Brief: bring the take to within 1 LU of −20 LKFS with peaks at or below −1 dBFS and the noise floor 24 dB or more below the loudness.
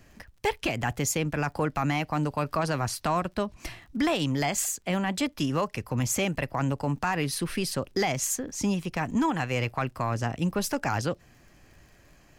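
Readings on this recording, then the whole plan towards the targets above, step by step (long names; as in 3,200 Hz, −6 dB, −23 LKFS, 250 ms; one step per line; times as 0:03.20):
crackle rate 32 per second; integrated loudness −28.5 LKFS; sample peak −15.5 dBFS; target loudness −20.0 LKFS
→ click removal
level +8.5 dB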